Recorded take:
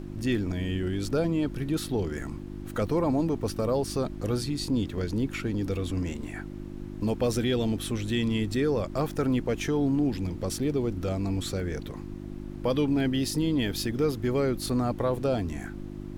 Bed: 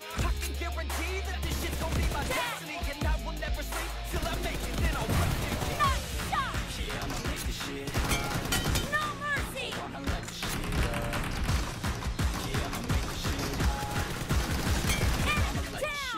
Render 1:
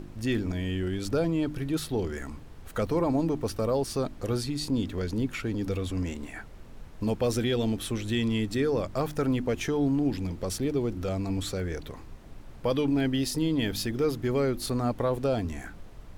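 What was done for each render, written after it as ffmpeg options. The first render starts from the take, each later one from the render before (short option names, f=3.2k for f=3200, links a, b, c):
-af "bandreject=f=50:t=h:w=4,bandreject=f=100:t=h:w=4,bandreject=f=150:t=h:w=4,bandreject=f=200:t=h:w=4,bandreject=f=250:t=h:w=4,bandreject=f=300:t=h:w=4,bandreject=f=350:t=h:w=4"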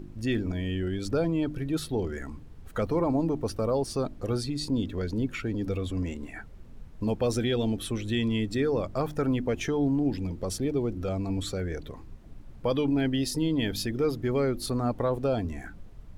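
-af "afftdn=nr=8:nf=-45"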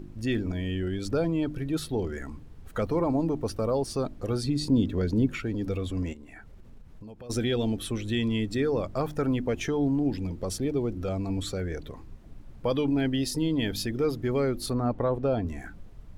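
-filter_complex "[0:a]asettb=1/sr,asplit=3[a][b][c];[a]atrim=end=4.434[d];[b]atrim=start=4.43:end=5.38,asetpts=PTS-STARTPTS,afade=t=in:d=0.004:c=qsin,afade=t=out:st=0.946:d=0.004:c=qsin,equalizer=f=180:w=0.38:g=5.5[e];[c]atrim=start=5.376[f];[d][e]acrossfade=d=0.004:c1=hsin:c2=qsin[g];[g][f]acrossfade=d=0.004:c1=qsin:c2=hsin,asplit=3[h][i][j];[h]afade=t=out:st=6.12:d=0.02[k];[i]acompressor=threshold=-43dB:ratio=5:attack=3.2:release=140:knee=1:detection=peak,afade=t=in:st=6.12:d=0.02,afade=t=out:st=7.29:d=0.02[l];[j]afade=t=in:st=7.29:d=0.02[m];[k][l][m]amix=inputs=3:normalize=0,asettb=1/sr,asplit=3[n][o][p];[n]atrim=end=14.734[q];[o]atrim=start=14.73:end=15.47,asetpts=PTS-STARTPTS,afade=t=in:d=0.004:c=qsin,afade=t=out:st=0.736:d=0.004:c=qsin,aemphasis=mode=reproduction:type=75fm[r];[p]atrim=start=15.466[s];[q][r]acrossfade=d=0.004:c1=hsin:c2=qsin[t];[t][s]acrossfade=d=0.004:c1=qsin:c2=hsin"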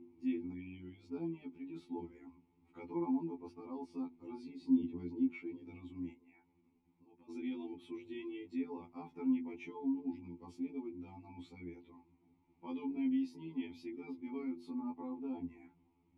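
-filter_complex "[0:a]asplit=3[a][b][c];[a]bandpass=f=300:t=q:w=8,volume=0dB[d];[b]bandpass=f=870:t=q:w=8,volume=-6dB[e];[c]bandpass=f=2.24k:t=q:w=8,volume=-9dB[f];[d][e][f]amix=inputs=3:normalize=0,afftfilt=real='re*2*eq(mod(b,4),0)':imag='im*2*eq(mod(b,4),0)':win_size=2048:overlap=0.75"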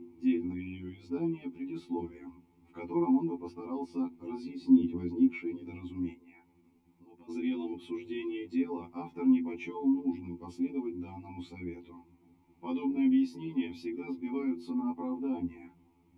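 -af "volume=8dB"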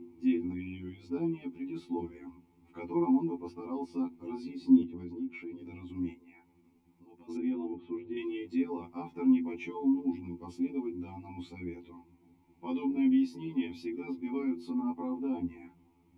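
-filter_complex "[0:a]asettb=1/sr,asplit=3[a][b][c];[a]atrim=end=4.834[d];[b]atrim=start=4.83:end=5.9,asetpts=PTS-STARTPTS,afade=t=in:d=0.004:c=qsin,afade=t=out:st=1.066:d=0.004:c=qsin,acompressor=threshold=-43dB:ratio=2:attack=3.2:release=140:knee=1:detection=peak[e];[c]atrim=start=5.896[f];[d][e]acrossfade=d=0.004:c1=hsin:c2=qsin[g];[g][f]acrossfade=d=0.004:c1=qsin:c2=hsin,asettb=1/sr,asplit=3[h][i][j];[h]atrim=end=7.374[k];[i]atrim=start=7.37:end=8.17,asetpts=PTS-STARTPTS,afade=t=in:d=0.004:c=qsin,afade=t=out:st=0.796:d=0.004:c=qsin,lowpass=1.5k[l];[j]atrim=start=8.166[m];[k][l]acrossfade=d=0.004:c1=hsin:c2=qsin[n];[n][m]acrossfade=d=0.004:c1=qsin:c2=hsin,asettb=1/sr,asplit=3[o][p][q];[o]atrim=end=11.844[r];[p]atrim=start=11.84:end=12.73,asetpts=PTS-STARTPTS,afade=t=in:d=0.004:c=qsin,afade=t=out:st=0.886:d=0.004:c=qsin,bandreject=f=1.2k:w=12[s];[q]atrim=start=12.726[t];[r][s]acrossfade=d=0.004:c1=hsin:c2=qsin[u];[u][t]acrossfade=d=0.004:c1=qsin:c2=hsin"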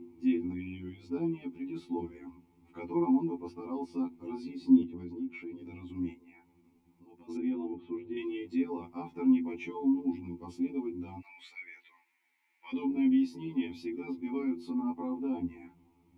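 -filter_complex "[0:a]asplit=3[a][b][c];[a]afade=t=out:st=11.21:d=0.02[d];[b]highpass=f=1.8k:t=q:w=4.6,afade=t=in:st=11.21:d=0.02,afade=t=out:st=12.72:d=0.02[e];[c]afade=t=in:st=12.72:d=0.02[f];[d][e][f]amix=inputs=3:normalize=0"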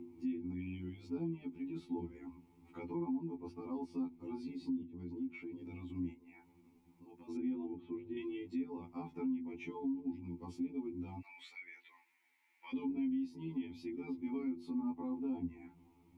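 -filter_complex "[0:a]acrossover=split=230[a][b];[b]acompressor=threshold=-56dB:ratio=1.5[c];[a][c]amix=inputs=2:normalize=0,alimiter=level_in=6.5dB:limit=-24dB:level=0:latency=1:release=351,volume=-6.5dB"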